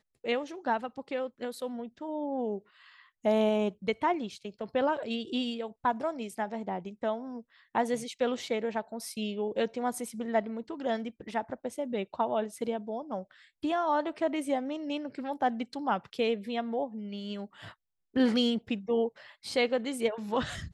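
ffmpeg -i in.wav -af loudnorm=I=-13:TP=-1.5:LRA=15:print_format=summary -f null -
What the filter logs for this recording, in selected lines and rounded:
Input Integrated:    -32.0 LUFS
Input True Peak:     -14.4 dBTP
Input LRA:             3.4 LU
Input Threshold:     -42.2 LUFS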